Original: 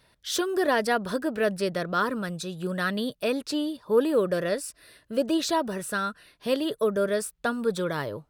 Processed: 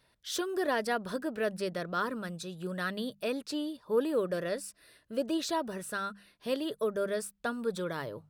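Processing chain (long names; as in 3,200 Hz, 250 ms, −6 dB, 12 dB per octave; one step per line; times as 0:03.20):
mains-hum notches 50/100/150/200 Hz
level −6.5 dB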